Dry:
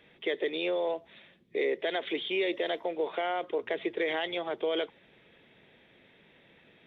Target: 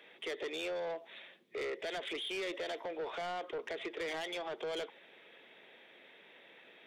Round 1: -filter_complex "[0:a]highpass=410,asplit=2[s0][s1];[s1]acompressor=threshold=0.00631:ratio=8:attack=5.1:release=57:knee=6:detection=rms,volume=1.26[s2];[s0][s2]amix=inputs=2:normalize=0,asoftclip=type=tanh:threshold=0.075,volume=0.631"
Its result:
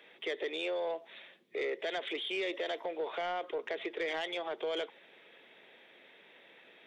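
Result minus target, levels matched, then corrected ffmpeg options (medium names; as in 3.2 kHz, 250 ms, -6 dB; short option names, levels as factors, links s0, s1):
saturation: distortion -10 dB
-filter_complex "[0:a]highpass=410,asplit=2[s0][s1];[s1]acompressor=threshold=0.00631:ratio=8:attack=5.1:release=57:knee=6:detection=rms,volume=1.26[s2];[s0][s2]amix=inputs=2:normalize=0,asoftclip=type=tanh:threshold=0.0299,volume=0.631"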